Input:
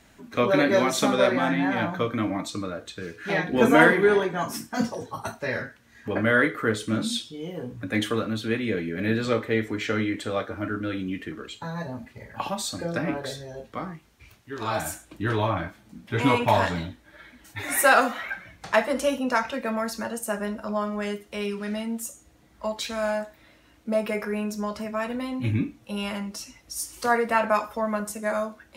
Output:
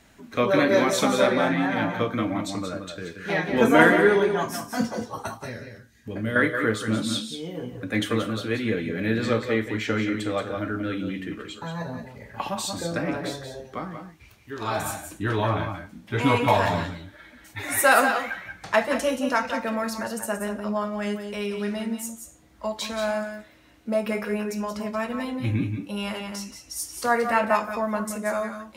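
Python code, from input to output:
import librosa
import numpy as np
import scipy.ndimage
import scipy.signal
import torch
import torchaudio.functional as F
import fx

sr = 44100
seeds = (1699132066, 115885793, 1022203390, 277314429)

p1 = fx.peak_eq(x, sr, hz=1100.0, db=-14.5, octaves=2.7, at=(5.37, 6.36))
y = p1 + fx.echo_multitap(p1, sr, ms=(174, 184), db=(-11.5, -9.5), dry=0)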